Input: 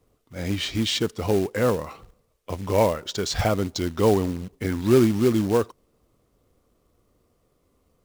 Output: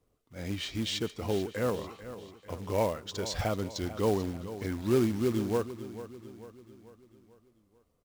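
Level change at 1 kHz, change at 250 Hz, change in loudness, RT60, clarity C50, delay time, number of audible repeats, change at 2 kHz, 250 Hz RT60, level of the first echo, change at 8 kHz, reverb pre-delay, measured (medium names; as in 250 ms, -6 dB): -8.0 dB, -8.5 dB, -8.5 dB, no reverb, no reverb, 442 ms, 4, -8.0 dB, no reverb, -13.5 dB, -8.0 dB, no reverb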